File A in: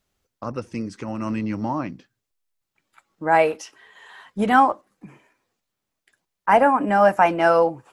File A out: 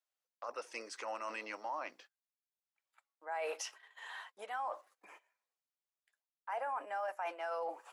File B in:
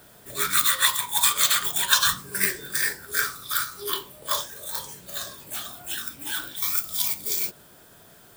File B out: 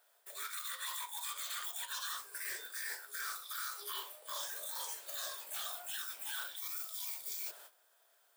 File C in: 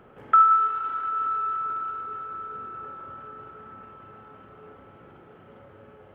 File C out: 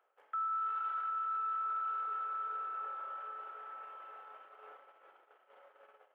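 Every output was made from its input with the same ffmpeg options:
ffmpeg -i in.wav -af "agate=range=-16dB:threshold=-48dB:ratio=16:detection=peak,highpass=frequency=560:width=0.5412,highpass=frequency=560:width=1.3066,areverse,acompressor=threshold=-32dB:ratio=10,areverse,alimiter=level_in=5dB:limit=-24dB:level=0:latency=1:release=14,volume=-5dB,volume=-2dB" out.wav

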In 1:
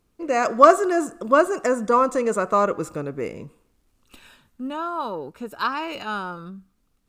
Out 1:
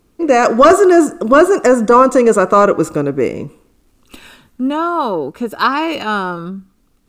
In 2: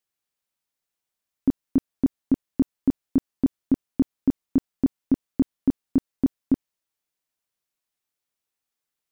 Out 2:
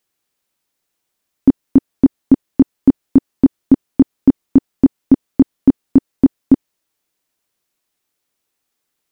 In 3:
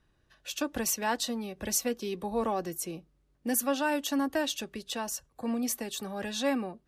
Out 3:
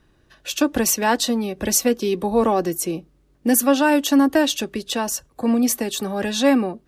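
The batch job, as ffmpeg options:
ffmpeg -i in.wav -af "equalizer=frequency=320:width_type=o:width=1.2:gain=4.5,apsyclip=11.5dB,volume=-1.5dB" out.wav

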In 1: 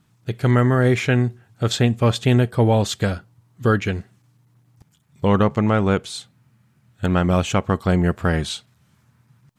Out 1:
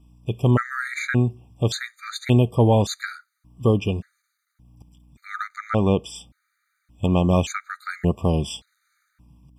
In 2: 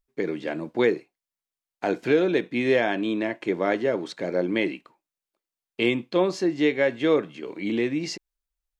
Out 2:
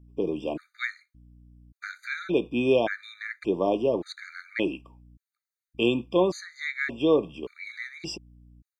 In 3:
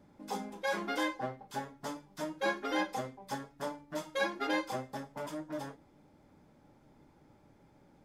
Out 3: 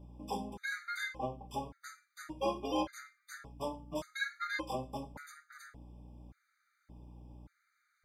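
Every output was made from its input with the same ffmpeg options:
ffmpeg -i in.wav -af "aeval=exprs='val(0)+0.00282*(sin(2*PI*60*n/s)+sin(2*PI*2*60*n/s)/2+sin(2*PI*3*60*n/s)/3+sin(2*PI*4*60*n/s)/4+sin(2*PI*5*60*n/s)/5)':channel_layout=same,afftfilt=real='re*gt(sin(2*PI*0.87*pts/sr)*(1-2*mod(floor(b*sr/1024/1200),2)),0)':imag='im*gt(sin(2*PI*0.87*pts/sr)*(1-2*mod(floor(b*sr/1024/1200),2)),0)':win_size=1024:overlap=0.75" out.wav

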